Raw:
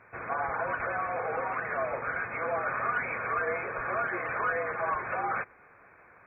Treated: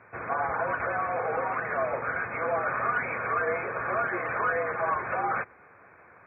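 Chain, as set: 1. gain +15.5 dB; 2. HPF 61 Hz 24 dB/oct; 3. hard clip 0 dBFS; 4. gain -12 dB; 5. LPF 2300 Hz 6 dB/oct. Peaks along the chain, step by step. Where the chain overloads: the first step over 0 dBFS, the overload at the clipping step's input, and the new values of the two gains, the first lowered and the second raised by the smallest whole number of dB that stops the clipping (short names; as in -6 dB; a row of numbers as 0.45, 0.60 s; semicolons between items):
-2.5, -2.5, -2.5, -14.5, -15.5 dBFS; no overload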